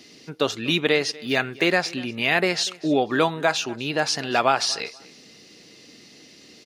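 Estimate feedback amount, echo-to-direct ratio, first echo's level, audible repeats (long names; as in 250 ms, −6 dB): 24%, −21.5 dB, −21.5 dB, 2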